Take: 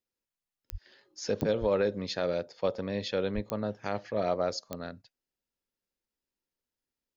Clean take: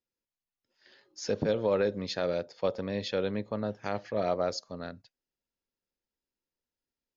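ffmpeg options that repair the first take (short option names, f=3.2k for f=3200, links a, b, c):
-filter_complex "[0:a]adeclick=t=4,asplit=3[a][b][c];[a]afade=t=out:st=0.71:d=0.02[d];[b]highpass=f=140:w=0.5412,highpass=f=140:w=1.3066,afade=t=in:st=0.71:d=0.02,afade=t=out:st=0.83:d=0.02[e];[c]afade=t=in:st=0.83:d=0.02[f];[d][e][f]amix=inputs=3:normalize=0,asplit=3[g][h][i];[g]afade=t=out:st=1.6:d=0.02[j];[h]highpass=f=140:w=0.5412,highpass=f=140:w=1.3066,afade=t=in:st=1.6:d=0.02,afade=t=out:st=1.72:d=0.02[k];[i]afade=t=in:st=1.72:d=0.02[l];[j][k][l]amix=inputs=3:normalize=0,asplit=3[m][n][o];[m]afade=t=out:st=3.34:d=0.02[p];[n]highpass=f=140:w=0.5412,highpass=f=140:w=1.3066,afade=t=in:st=3.34:d=0.02,afade=t=out:st=3.46:d=0.02[q];[o]afade=t=in:st=3.46:d=0.02[r];[p][q][r]amix=inputs=3:normalize=0"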